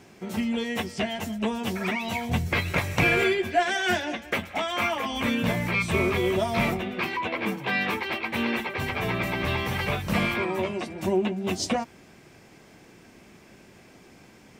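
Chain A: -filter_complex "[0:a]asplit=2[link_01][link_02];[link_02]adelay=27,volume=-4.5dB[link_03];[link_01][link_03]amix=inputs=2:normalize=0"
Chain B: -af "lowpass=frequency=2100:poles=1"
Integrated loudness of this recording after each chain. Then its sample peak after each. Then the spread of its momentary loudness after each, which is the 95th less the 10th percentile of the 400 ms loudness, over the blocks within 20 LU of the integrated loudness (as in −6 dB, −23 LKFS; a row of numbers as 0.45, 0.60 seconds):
−25.5, −28.0 LKFS; −9.0, −11.5 dBFS; 6, 6 LU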